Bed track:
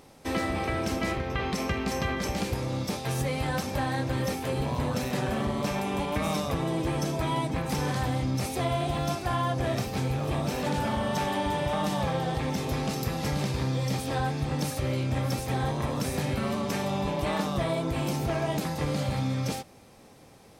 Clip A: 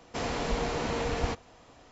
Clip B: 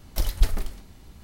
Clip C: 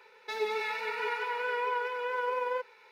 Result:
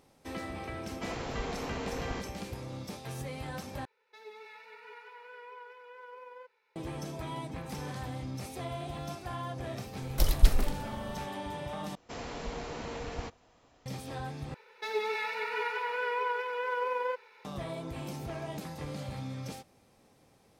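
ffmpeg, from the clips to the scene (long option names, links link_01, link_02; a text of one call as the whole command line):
ffmpeg -i bed.wav -i cue0.wav -i cue1.wav -i cue2.wav -filter_complex "[1:a]asplit=2[link_01][link_02];[3:a]asplit=2[link_03][link_04];[0:a]volume=-10.5dB[link_05];[link_03]highpass=frequency=75:width=0.5412,highpass=frequency=75:width=1.3066[link_06];[link_05]asplit=4[link_07][link_08][link_09][link_10];[link_07]atrim=end=3.854[link_11];[link_06]atrim=end=2.91,asetpts=PTS-STARTPTS,volume=-17dB[link_12];[link_08]atrim=start=6.756:end=11.954[link_13];[link_02]atrim=end=1.91,asetpts=PTS-STARTPTS,volume=-8.5dB[link_14];[link_09]atrim=start=13.856:end=14.544[link_15];[link_04]atrim=end=2.91,asetpts=PTS-STARTPTS,volume=-0.5dB[link_16];[link_10]atrim=start=17.446[link_17];[link_01]atrim=end=1.91,asetpts=PTS-STARTPTS,volume=-7.5dB,afade=type=in:duration=0.004:curve=hsin,afade=type=out:start_time=1.906:duration=0.004:curve=hsin,adelay=870[link_18];[2:a]atrim=end=1.23,asetpts=PTS-STARTPTS,volume=-0.5dB,afade=type=in:duration=0.004:curve=hsin,afade=type=out:start_time=1.226:duration=0.004:curve=hsin,adelay=441882S[link_19];[link_11][link_12]acrossfade=duration=0.004:curve1=hsin:curve2=hsin[link_20];[link_20][link_13]acrossfade=duration=0.004:curve1=hsin:curve2=hsin[link_21];[link_21][link_14]acrossfade=duration=0.004:curve1=hsin:curve2=hsin[link_22];[link_22][link_15]acrossfade=duration=0.004:curve1=hsin:curve2=hsin[link_23];[link_23][link_16]acrossfade=duration=0.004:curve1=hsin:curve2=hsin[link_24];[link_24][link_17]acrossfade=duration=0.004:curve1=hsin:curve2=hsin[link_25];[link_25][link_18][link_19]amix=inputs=3:normalize=0" out.wav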